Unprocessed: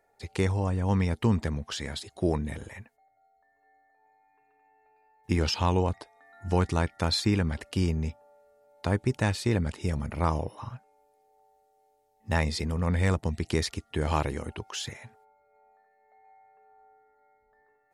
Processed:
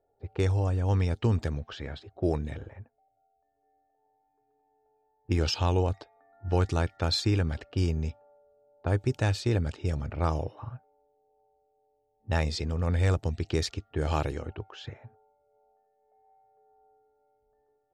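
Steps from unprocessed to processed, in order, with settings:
low-pass that shuts in the quiet parts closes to 620 Hz, open at −23.5 dBFS
thirty-one-band graphic EQ 100 Hz +3 dB, 200 Hz −11 dB, 1,000 Hz −7 dB, 2,000 Hz −7 dB, 10,000 Hz −11 dB

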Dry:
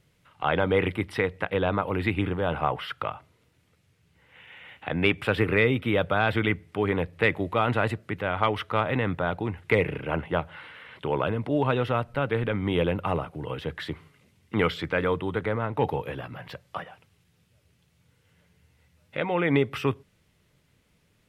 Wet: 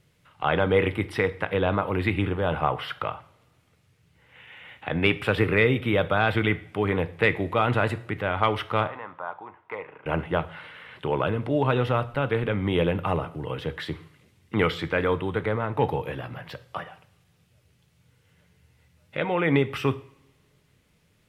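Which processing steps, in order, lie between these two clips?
0:08.87–0:10.06: resonant band-pass 1,000 Hz, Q 3.1
coupled-rooms reverb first 0.51 s, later 1.8 s, from −22 dB, DRR 12 dB
level +1 dB

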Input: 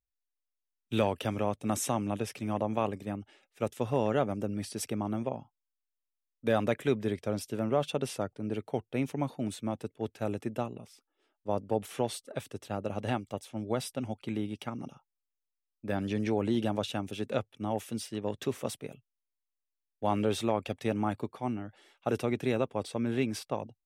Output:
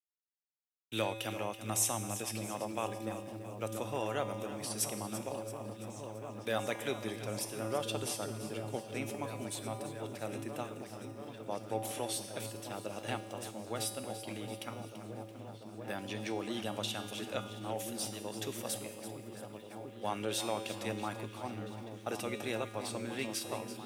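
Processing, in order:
downward expander −48 dBFS
spectral tilt +3 dB per octave
tuned comb filter 110 Hz, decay 1.3 s, harmonics odd, mix 80%
on a send: echo whose low-pass opens from repeat to repeat 690 ms, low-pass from 200 Hz, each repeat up 1 octave, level −3 dB
on the sum: feedback echo at a low word length 336 ms, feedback 55%, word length 11 bits, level −12 dB
level +8 dB

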